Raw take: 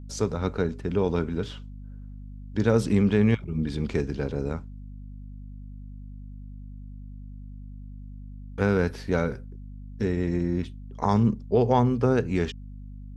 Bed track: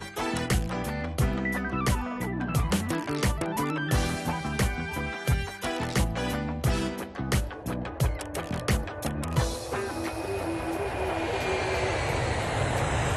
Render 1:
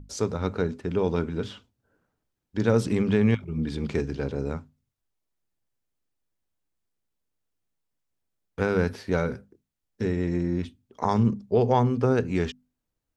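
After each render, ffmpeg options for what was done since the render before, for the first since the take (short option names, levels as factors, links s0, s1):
-af "bandreject=f=50:t=h:w=6,bandreject=f=100:t=h:w=6,bandreject=f=150:t=h:w=6,bandreject=f=200:t=h:w=6,bandreject=f=250:t=h:w=6"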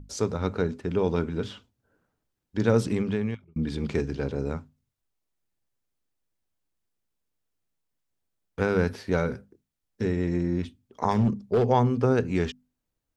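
-filter_complex "[0:a]asettb=1/sr,asplit=3[s0][s1][s2];[s0]atrim=end=11.114[s3];[s1]atrim=start=11.11:end=11.7,asetpts=PTS-STARTPTS,afade=t=in:d=0.004:c=qsin,afade=t=out:st=0.586:d=0.004:c=qsin,asoftclip=type=hard:threshold=0.15[s4];[s2]atrim=start=11.696[s5];[s3][s4]acrossfade=d=0.004:c1=hsin:c2=qsin[s6];[s6][s5]acrossfade=d=0.004:c1=qsin:c2=hsin,asplit=2[s7][s8];[s7]atrim=end=3.56,asetpts=PTS-STARTPTS,afade=t=out:st=2.79:d=0.77[s9];[s8]atrim=start=3.56,asetpts=PTS-STARTPTS,afade=t=in:d=0.004:c=hsin[s10];[s9][s10]concat=n=2:v=0:a=1"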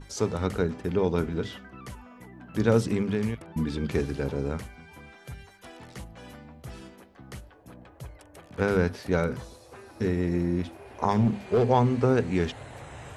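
-filter_complex "[1:a]volume=0.158[s0];[0:a][s0]amix=inputs=2:normalize=0"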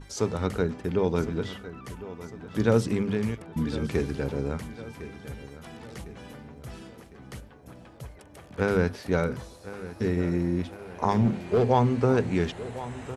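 -af "aecho=1:1:1055|2110|3165|4220|5275:0.178|0.0925|0.0481|0.025|0.013"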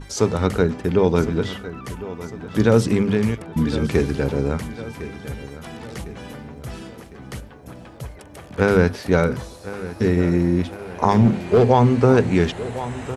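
-af "volume=2.51,alimiter=limit=0.708:level=0:latency=1"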